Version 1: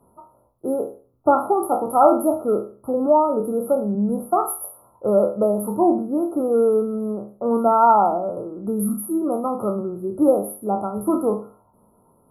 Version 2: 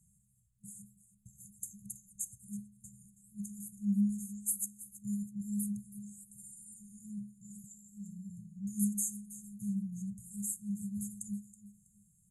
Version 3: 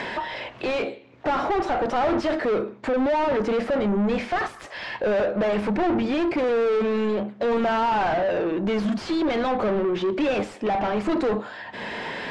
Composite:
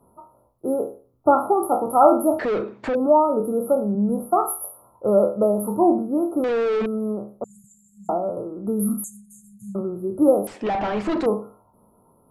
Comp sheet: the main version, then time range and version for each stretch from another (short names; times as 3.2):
1
2.39–2.95 from 3
6.44–6.86 from 3
7.44–8.09 from 2
9.04–9.75 from 2
10.47–11.26 from 3